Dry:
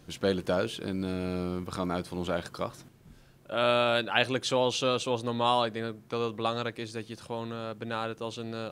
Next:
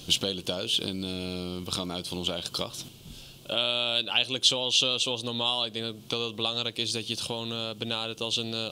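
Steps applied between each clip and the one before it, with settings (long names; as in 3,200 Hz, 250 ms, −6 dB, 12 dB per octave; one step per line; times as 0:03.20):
downward compressor 6 to 1, threshold −37 dBFS, peak gain reduction 17 dB
high shelf with overshoot 2,400 Hz +9 dB, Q 3
level +7 dB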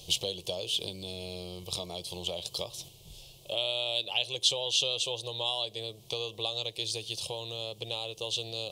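phaser with its sweep stopped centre 600 Hz, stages 4
level −2 dB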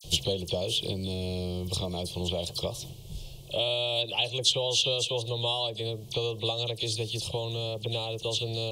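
low-shelf EQ 390 Hz +11.5 dB
all-pass dispersion lows, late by 43 ms, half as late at 2,900 Hz
level +1.5 dB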